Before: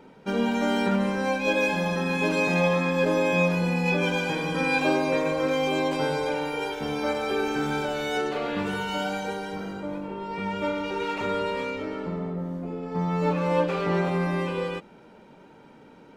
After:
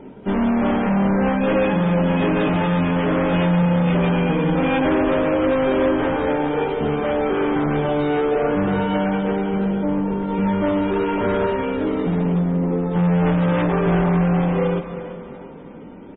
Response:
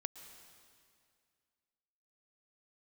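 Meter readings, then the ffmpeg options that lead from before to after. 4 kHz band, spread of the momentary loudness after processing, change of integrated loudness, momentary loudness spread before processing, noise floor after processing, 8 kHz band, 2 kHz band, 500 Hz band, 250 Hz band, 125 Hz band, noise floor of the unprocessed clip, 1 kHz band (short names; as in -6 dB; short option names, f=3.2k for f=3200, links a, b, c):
-1.0 dB, 5 LU, +6.5 dB, 9 LU, -38 dBFS, under -35 dB, +0.5 dB, +6.0 dB, +9.0 dB, +10.0 dB, -51 dBFS, +5.0 dB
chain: -filter_complex "[0:a]tiltshelf=f=970:g=7.5,asplit=2[a][b];[b]acrusher=samples=15:mix=1:aa=0.000001:lfo=1:lforange=24:lforate=0.77,volume=-9.5dB[c];[a][c]amix=inputs=2:normalize=0,asoftclip=type=hard:threshold=-21dB,flanger=delay=3:depth=3.7:regen=-64:speed=0.18:shape=sinusoidal,aecho=1:1:352|704|1056|1408|1760:0.224|0.112|0.056|0.028|0.014,asplit=2[d][e];[1:a]atrim=start_sample=2205[f];[e][f]afir=irnorm=-1:irlink=0,volume=7.5dB[g];[d][g]amix=inputs=2:normalize=0,aresample=8000,aresample=44100" -ar 22050 -c:a libmp3lame -b:a 16k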